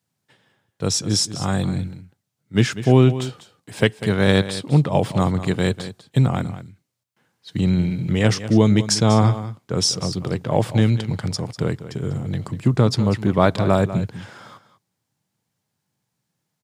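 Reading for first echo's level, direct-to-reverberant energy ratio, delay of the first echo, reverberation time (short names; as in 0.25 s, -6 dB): -13.5 dB, none, 0.196 s, none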